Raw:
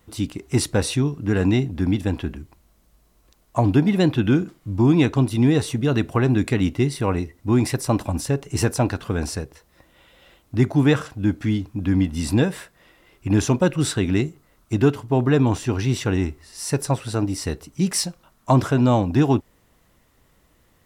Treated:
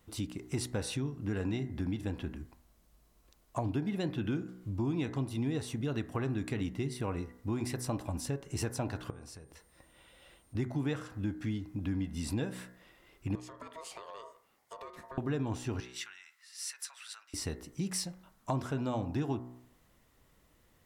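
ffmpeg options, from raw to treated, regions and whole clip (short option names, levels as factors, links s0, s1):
-filter_complex "[0:a]asettb=1/sr,asplit=3[s0][s1][s2];[s0]atrim=end=9.104[s3];[s1]atrim=start=9.1:end=10.55,asetpts=PTS-STARTPTS,afade=t=in:d=0.004:c=qsin,afade=t=out:st=1.446:d=0.004:c=qsin,acompressor=threshold=0.0112:ratio=8:attack=3.2:release=140:knee=1:detection=peak,aeval=exprs='val(0)+0.000708*sin(2*PI*9000*n/s)':c=same[s4];[s2]atrim=start=10.546[s5];[s3][s4]acrossfade=d=0.004:c1=hsin:c2=qsin[s6];[s6][s5]acrossfade=d=0.004:c1=qsin:c2=hsin,asettb=1/sr,asplit=3[s7][s8][s9];[s7]atrim=end=13.354[s10];[s8]atrim=start=13.35:end=15.18,asetpts=PTS-STARTPTS,afade=t=in:d=0.004:c=qsin,afade=t=out:st=1.826:d=0.004:c=qsin,lowshelf=f=160:g=-11,acompressor=threshold=0.0251:ratio=20:attack=3.2:release=140:knee=1:detection=peak,aeval=exprs='val(0)*sin(2*PI*800*n/s)':c=same[s11];[s9]atrim=start=15.176[s12];[s10][s11]acrossfade=d=0.004:c1=hsin:c2=qsin[s13];[s13][s12]acrossfade=d=0.004:c1=qsin:c2=hsin,asettb=1/sr,asplit=3[s14][s15][s16];[s14]atrim=end=15.804[s17];[s15]atrim=start=15.8:end=17.34,asetpts=PTS-STARTPTS,afade=t=in:d=0.004:c=qsin,afade=t=out:st=1.536:d=0.004:c=qsin,highshelf=f=8400:g=-6,acompressor=threshold=0.0501:ratio=5:attack=3.2:release=140:knee=1:detection=peak,highpass=f=1400:w=0.5412,highpass=f=1400:w=1.3066[s18];[s16]atrim=start=17.336[s19];[s17][s18]acrossfade=d=0.004:c1=hsin:c2=qsin[s20];[s20][s19]acrossfade=d=0.004:c1=qsin:c2=hsin,bandreject=f=61.64:t=h:w=4,bandreject=f=123.28:t=h:w=4,bandreject=f=184.92:t=h:w=4,bandreject=f=246.56:t=h:w=4,bandreject=f=308.2:t=h:w=4,bandreject=f=369.84:t=h:w=4,bandreject=f=431.48:t=h:w=4,bandreject=f=493.12:t=h:w=4,bandreject=f=554.76:t=h:w=4,bandreject=f=616.4:t=h:w=4,bandreject=f=678.04:t=h:w=4,bandreject=f=739.68:t=h:w=4,bandreject=f=801.32:t=h:w=4,bandreject=f=862.96:t=h:w=4,bandreject=f=924.6:t=h:w=4,bandreject=f=986.24:t=h:w=4,bandreject=f=1047.88:t=h:w=4,bandreject=f=1109.52:t=h:w=4,bandreject=f=1171.16:t=h:w=4,bandreject=f=1232.8:t=h:w=4,bandreject=f=1294.44:t=h:w=4,bandreject=f=1356.08:t=h:w=4,bandreject=f=1417.72:t=h:w=4,bandreject=f=1479.36:t=h:w=4,bandreject=f=1541:t=h:w=4,bandreject=f=1602.64:t=h:w=4,bandreject=f=1664.28:t=h:w=4,bandreject=f=1725.92:t=h:w=4,bandreject=f=1787.56:t=h:w=4,bandreject=f=1849.2:t=h:w=4,bandreject=f=1910.84:t=h:w=4,bandreject=f=1972.48:t=h:w=4,bandreject=f=2034.12:t=h:w=4,bandreject=f=2095.76:t=h:w=4,acompressor=threshold=0.0398:ratio=2.5,volume=0.473"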